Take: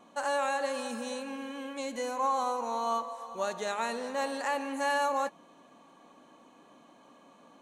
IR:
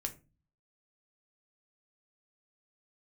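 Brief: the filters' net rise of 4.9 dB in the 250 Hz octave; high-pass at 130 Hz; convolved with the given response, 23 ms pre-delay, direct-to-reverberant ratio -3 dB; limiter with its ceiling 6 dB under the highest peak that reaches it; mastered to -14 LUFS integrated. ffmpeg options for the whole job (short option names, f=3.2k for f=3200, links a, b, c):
-filter_complex "[0:a]highpass=130,equalizer=f=250:t=o:g=5.5,alimiter=limit=-24dB:level=0:latency=1,asplit=2[a][b];[1:a]atrim=start_sample=2205,adelay=23[c];[b][c]afir=irnorm=-1:irlink=0,volume=3.5dB[d];[a][d]amix=inputs=2:normalize=0,volume=15dB"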